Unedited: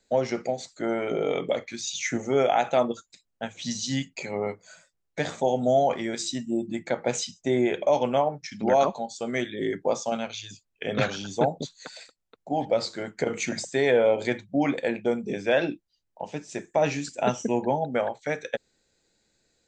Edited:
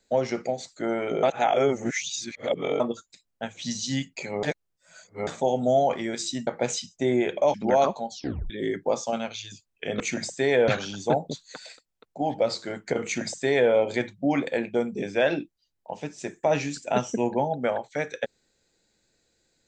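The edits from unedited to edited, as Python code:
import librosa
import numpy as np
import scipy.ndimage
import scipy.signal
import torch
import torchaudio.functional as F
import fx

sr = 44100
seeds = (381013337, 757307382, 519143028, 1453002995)

y = fx.edit(x, sr, fx.reverse_span(start_s=1.23, length_s=1.57),
    fx.reverse_span(start_s=4.43, length_s=0.84),
    fx.cut(start_s=6.47, length_s=0.45),
    fx.cut(start_s=7.99, length_s=0.54),
    fx.tape_stop(start_s=9.1, length_s=0.39),
    fx.duplicate(start_s=13.35, length_s=0.68, to_s=10.99), tone=tone)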